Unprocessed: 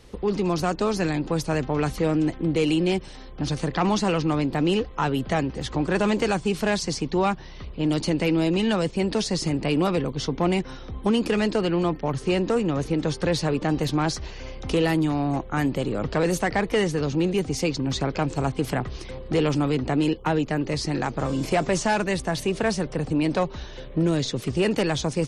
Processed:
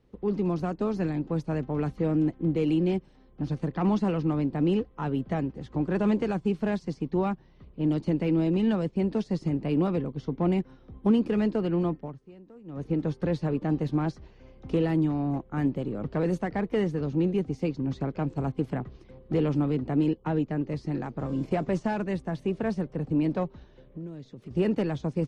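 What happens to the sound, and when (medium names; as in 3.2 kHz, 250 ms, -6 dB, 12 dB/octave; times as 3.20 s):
11.97–12.88 s: dip -15.5 dB, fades 0.24 s
23.92–24.51 s: compression 3:1, threshold -32 dBFS
whole clip: low-pass 1.7 kHz 6 dB/octave; peaking EQ 200 Hz +7 dB 2.1 oct; upward expansion 1.5:1, over -36 dBFS; trim -5.5 dB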